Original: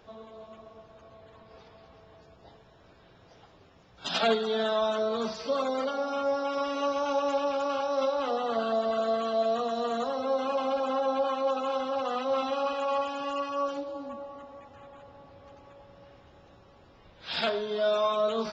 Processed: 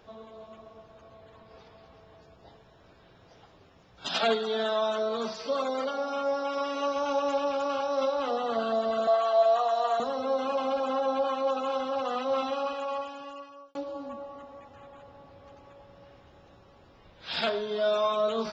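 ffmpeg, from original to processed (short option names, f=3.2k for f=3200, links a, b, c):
-filter_complex "[0:a]asettb=1/sr,asplit=3[a][b][c];[a]atrim=end=4.084[d];[b]atrim=start=4.08:end=6.96,asetpts=PTS-STARTPTS,afade=t=in:d=0.004:c=qsin,afade=t=out:st=2.876:d=0.004:c=qsin,lowshelf=f=140:g=-9.5[e];[c]atrim=start=6.956[f];[d][e]acrossfade=d=0.004:c1=hsin:c2=qsin[g];[g][f]acrossfade=d=0.004:c1=qsin:c2=hsin,asettb=1/sr,asplit=3[h][i][j];[h]atrim=end=9.074[k];[i]atrim=start=9.07:end=10,asetpts=PTS-STARTPTS,afade=t=in:d=0.004:c=qsin,afade=t=out:st=0.926:d=0.004:c=qsin,highpass=f=770:t=q:w=2.6[l];[j]atrim=start=9.996[m];[k][l]acrossfade=d=0.004:c1=hsin:c2=qsin[n];[n][m]acrossfade=d=0.004:c1=qsin:c2=hsin,asplit=2[o][p];[o]atrim=end=13.75,asetpts=PTS-STARTPTS,afade=t=out:st=12.4:d=1.35[q];[p]atrim=start=13.75,asetpts=PTS-STARTPTS,afade=t=in:d=0.004:c=hsin[r];[q][r]concat=n=2:v=0:a=1"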